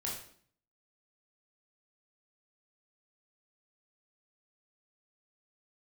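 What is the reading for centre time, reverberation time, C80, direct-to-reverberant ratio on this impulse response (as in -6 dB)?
41 ms, 0.55 s, 8.0 dB, -4.0 dB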